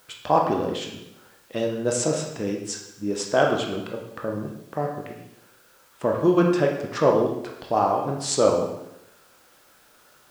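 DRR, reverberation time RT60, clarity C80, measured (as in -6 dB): 0.5 dB, 0.85 s, 7.5 dB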